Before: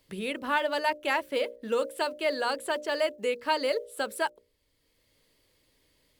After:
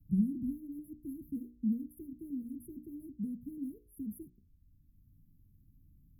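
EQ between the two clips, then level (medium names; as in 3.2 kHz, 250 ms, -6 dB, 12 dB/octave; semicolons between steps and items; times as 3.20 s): inverse Chebyshev band-stop 500–6200 Hz, stop band 50 dB; inverse Chebyshev band-stop 780–7600 Hz, stop band 40 dB; distance through air 62 m; +13.5 dB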